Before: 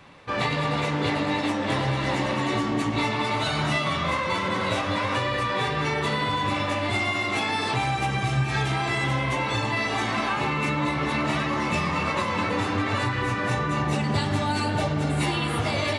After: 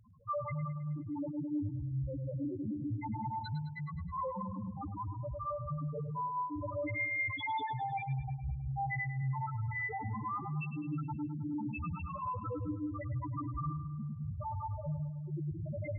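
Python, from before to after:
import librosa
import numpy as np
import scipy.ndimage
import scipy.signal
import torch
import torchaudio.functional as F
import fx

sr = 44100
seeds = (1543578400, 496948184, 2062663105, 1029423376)

y = fx.octave_divider(x, sr, octaves=1, level_db=-3.0)
y = fx.low_shelf(y, sr, hz=190.0, db=5.0, at=(3.6, 5.78))
y = fx.over_compress(y, sr, threshold_db=-26.0, ratio=-0.5)
y = fx.spec_topn(y, sr, count=1)
y = fx.echo_feedback(y, sr, ms=105, feedback_pct=57, wet_db=-11.0)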